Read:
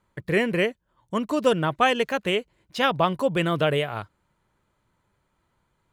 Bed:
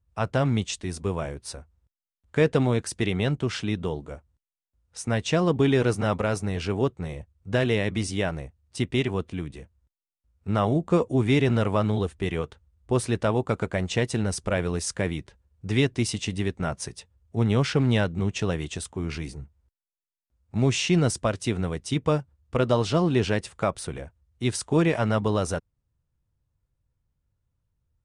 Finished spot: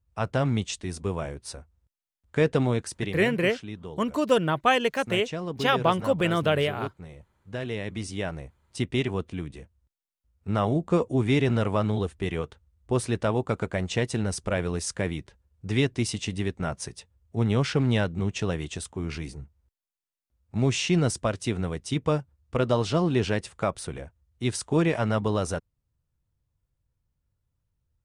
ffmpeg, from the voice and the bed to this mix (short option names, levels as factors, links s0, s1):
-filter_complex "[0:a]adelay=2850,volume=0.891[s0];[1:a]volume=2.37,afade=t=out:st=2.71:d=0.6:silence=0.354813,afade=t=in:st=7.53:d=1.26:silence=0.354813[s1];[s0][s1]amix=inputs=2:normalize=0"